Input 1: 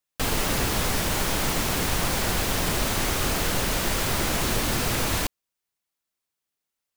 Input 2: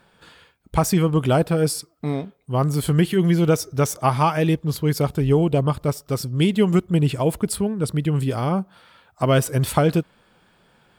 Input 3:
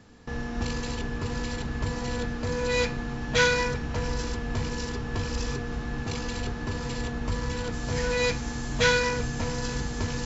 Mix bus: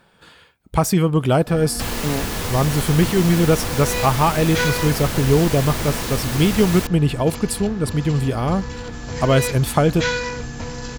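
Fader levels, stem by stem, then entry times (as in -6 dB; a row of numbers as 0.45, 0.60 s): -1.5, +1.5, 0.0 dB; 1.60, 0.00, 1.20 s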